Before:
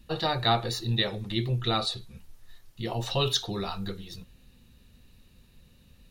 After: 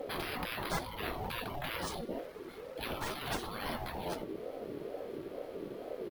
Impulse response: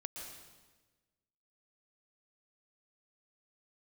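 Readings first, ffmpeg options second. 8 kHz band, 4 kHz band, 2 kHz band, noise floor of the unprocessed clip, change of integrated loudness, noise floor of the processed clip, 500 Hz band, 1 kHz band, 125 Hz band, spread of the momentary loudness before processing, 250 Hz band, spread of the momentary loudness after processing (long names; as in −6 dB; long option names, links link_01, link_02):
−6.5 dB, −13.5 dB, −3.0 dB, −58 dBFS, −11.0 dB, −48 dBFS, −5.5 dB, −7.0 dB, −15.0 dB, 13 LU, −7.0 dB, 6 LU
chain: -filter_complex "[0:a]afftfilt=real='re*lt(hypot(re,im),0.0398)':imag='im*lt(hypot(re,im),0.0398)':win_size=1024:overlap=0.75,firequalizer=gain_entry='entry(230,0);entry(1200,-13);entry(2000,-10);entry(5000,-19);entry(7900,-15);entry(14000,6)':delay=0.05:min_phase=1,asplit=2[link_01][link_02];[link_02]alimiter=level_in=17dB:limit=-24dB:level=0:latency=1:release=472,volume=-17dB,volume=2.5dB[link_03];[link_01][link_03]amix=inputs=2:normalize=0,acontrast=60,acrossover=split=1800[link_04][link_05];[link_04]crystalizer=i=5:c=0[link_06];[link_06][link_05]amix=inputs=2:normalize=0,acrusher=samples=3:mix=1:aa=0.000001,aeval=exprs='val(0)+0.000708*sin(2*PI*780*n/s)':channel_layout=same,aeval=exprs='val(0)*sin(2*PI*440*n/s+440*0.2/2.2*sin(2*PI*2.2*n/s))':channel_layout=same,volume=3dB"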